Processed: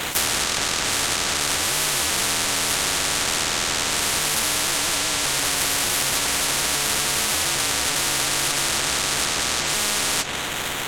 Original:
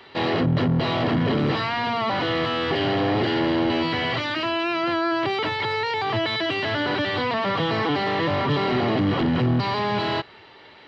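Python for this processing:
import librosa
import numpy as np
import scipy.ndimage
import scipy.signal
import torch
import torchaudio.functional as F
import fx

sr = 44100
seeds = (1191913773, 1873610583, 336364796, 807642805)

y = fx.band_swap(x, sr, width_hz=1000)
y = fx.doubler(y, sr, ms=14.0, db=-5)
y = fx.sample_hold(y, sr, seeds[0], rate_hz=5100.0, jitter_pct=20)
y = fx.env_lowpass_down(y, sr, base_hz=2800.0, full_db=-15.0)
y = fx.spectral_comp(y, sr, ratio=10.0)
y = y * 10.0 ** (3.0 / 20.0)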